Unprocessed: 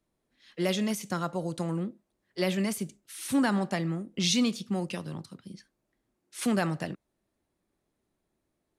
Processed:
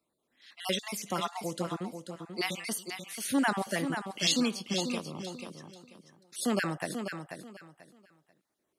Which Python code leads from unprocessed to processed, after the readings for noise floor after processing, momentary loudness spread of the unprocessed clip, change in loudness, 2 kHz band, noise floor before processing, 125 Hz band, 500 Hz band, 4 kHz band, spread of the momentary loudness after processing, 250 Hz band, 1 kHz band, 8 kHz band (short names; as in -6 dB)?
-81 dBFS, 17 LU, -2.5 dB, +2.0 dB, -81 dBFS, -7.0 dB, -2.5 dB, +1.0 dB, 17 LU, -4.0 dB, +1.0 dB, +0.5 dB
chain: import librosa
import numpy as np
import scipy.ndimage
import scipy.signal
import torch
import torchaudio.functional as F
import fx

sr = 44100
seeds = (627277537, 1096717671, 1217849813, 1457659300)

y = fx.spec_dropout(x, sr, seeds[0], share_pct=29)
y = fx.highpass(y, sr, hz=390.0, slope=6)
y = fx.echo_feedback(y, sr, ms=488, feedback_pct=24, wet_db=-7.5)
y = y * 10.0 ** (2.5 / 20.0)